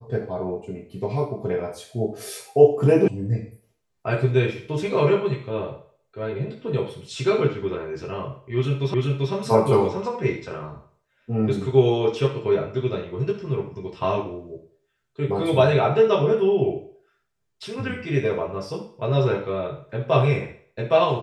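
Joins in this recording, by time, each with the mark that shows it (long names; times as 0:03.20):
0:03.08: cut off before it has died away
0:08.94: the same again, the last 0.39 s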